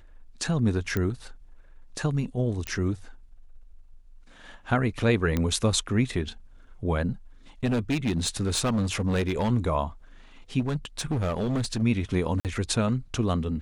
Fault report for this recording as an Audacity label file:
0.970000	0.970000	click −14 dBFS
2.670000	2.670000	click −15 dBFS
5.370000	5.370000	click −13 dBFS
7.640000	9.490000	clipping −21 dBFS
10.590000	11.830000	clipping −23 dBFS
12.400000	12.450000	drop-out 48 ms

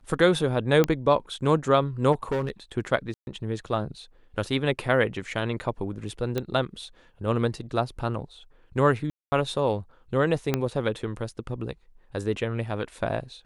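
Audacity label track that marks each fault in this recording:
0.840000	0.840000	click −9 dBFS
2.120000	2.500000	clipping −22 dBFS
3.140000	3.270000	drop-out 131 ms
6.380000	6.380000	click −14 dBFS
9.100000	9.320000	drop-out 220 ms
10.540000	10.540000	click −9 dBFS

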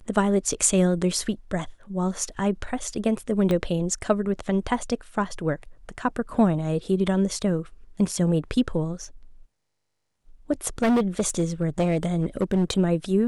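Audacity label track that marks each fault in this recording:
3.510000	3.510000	click −13 dBFS
10.820000	12.790000	clipping −17 dBFS

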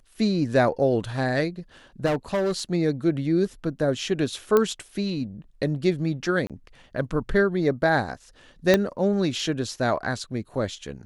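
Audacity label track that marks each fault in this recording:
2.050000	2.600000	clipping −20.5 dBFS
4.570000	4.570000	click −8 dBFS
6.470000	6.500000	drop-out 27 ms
8.740000	8.740000	click −5 dBFS

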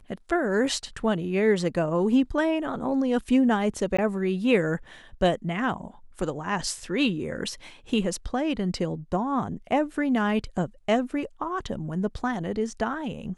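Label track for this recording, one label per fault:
3.970000	3.980000	drop-out 15 ms

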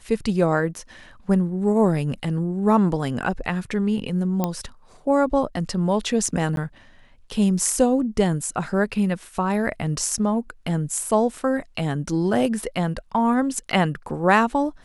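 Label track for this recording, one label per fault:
4.440000	4.440000	click −9 dBFS
6.560000	6.570000	drop-out 12 ms

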